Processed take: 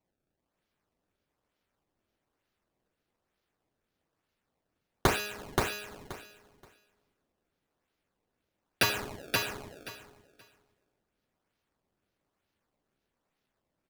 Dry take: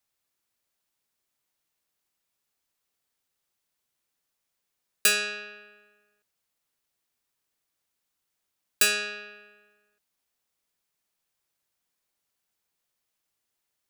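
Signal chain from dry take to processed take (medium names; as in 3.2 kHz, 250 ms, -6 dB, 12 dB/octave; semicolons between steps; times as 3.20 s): dynamic bell 1.9 kHz, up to -5 dB, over -38 dBFS, Q 1.1; decimation with a swept rate 25×, swing 160% 1.1 Hz; feedback delay 527 ms, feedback 18%, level -3 dB; trim -3.5 dB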